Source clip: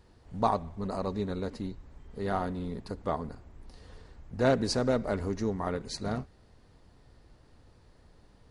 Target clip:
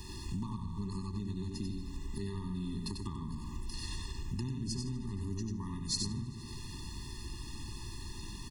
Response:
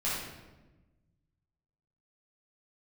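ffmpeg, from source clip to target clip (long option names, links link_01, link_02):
-filter_complex "[0:a]asplit=2[link_01][link_02];[link_02]aecho=0:1:76|152|228|304|380|456:0.211|0.12|0.0687|0.0391|0.0223|0.0127[link_03];[link_01][link_03]amix=inputs=2:normalize=0,acrossover=split=200[link_04][link_05];[link_05]acompressor=threshold=-42dB:ratio=6[link_06];[link_04][link_06]amix=inputs=2:normalize=0,asplit=2[link_07][link_08];[link_08]aecho=0:1:94:0.631[link_09];[link_07][link_09]amix=inputs=2:normalize=0,acompressor=threshold=-49dB:ratio=6,aexciter=amount=2.9:drive=6.8:freq=2500,afftfilt=real='re*eq(mod(floor(b*sr/1024/410),2),0)':imag='im*eq(mod(floor(b*sr/1024/410),2),0)':win_size=1024:overlap=0.75,volume=13.5dB"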